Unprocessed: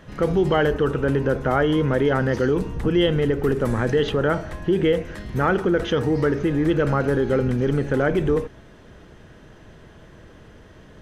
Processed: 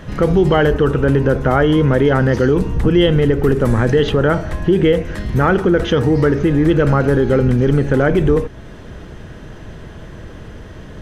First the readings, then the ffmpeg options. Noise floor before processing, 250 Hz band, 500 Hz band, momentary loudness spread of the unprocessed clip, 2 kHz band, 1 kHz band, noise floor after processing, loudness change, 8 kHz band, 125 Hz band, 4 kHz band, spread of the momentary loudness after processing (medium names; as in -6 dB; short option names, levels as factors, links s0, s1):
-47 dBFS, +7.0 dB, +6.0 dB, 4 LU, +5.0 dB, +5.5 dB, -35 dBFS, +6.5 dB, no reading, +8.5 dB, +5.0 dB, 3 LU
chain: -filter_complex "[0:a]asplit=2[s0][s1];[s1]acompressor=threshold=0.02:ratio=6,volume=0.891[s2];[s0][s2]amix=inputs=2:normalize=0,lowshelf=f=170:g=5.5,volume=1.58"